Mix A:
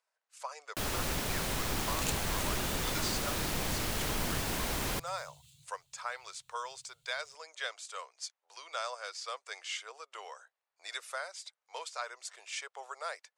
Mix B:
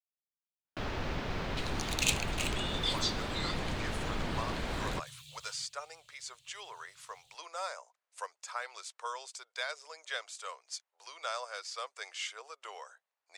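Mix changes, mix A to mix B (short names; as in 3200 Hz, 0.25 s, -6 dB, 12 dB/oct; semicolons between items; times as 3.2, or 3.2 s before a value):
speech: entry +2.50 s; first sound: add air absorption 230 m; second sound: add bell 2600 Hz +12.5 dB 3 oct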